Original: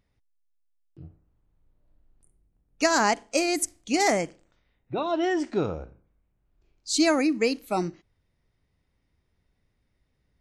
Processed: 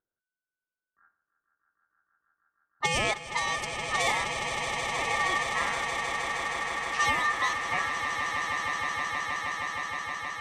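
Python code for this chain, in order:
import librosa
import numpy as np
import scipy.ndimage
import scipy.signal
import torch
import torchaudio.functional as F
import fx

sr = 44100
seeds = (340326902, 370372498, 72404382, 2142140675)

y = x * np.sin(2.0 * np.pi * 1500.0 * np.arange(len(x)) / sr)
y = fx.env_lowpass(y, sr, base_hz=460.0, full_db=-21.0)
y = fx.echo_swell(y, sr, ms=157, loudest=8, wet_db=-10.0)
y = y * librosa.db_to_amplitude(-2.5)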